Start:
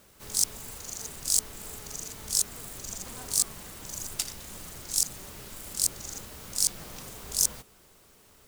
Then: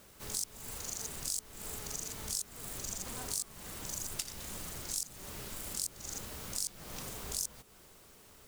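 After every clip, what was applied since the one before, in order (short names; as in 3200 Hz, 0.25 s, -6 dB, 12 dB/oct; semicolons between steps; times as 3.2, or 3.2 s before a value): compressor 4:1, threshold -35 dBFS, peak gain reduction 14.5 dB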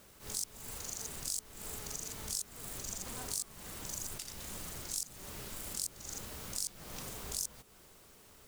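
attack slew limiter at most 150 dB/s; gain -1 dB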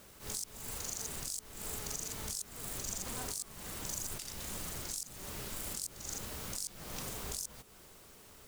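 limiter -28.5 dBFS, peak gain reduction 8 dB; gain +2.5 dB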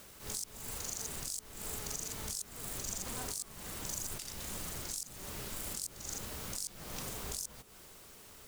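mismatched tape noise reduction encoder only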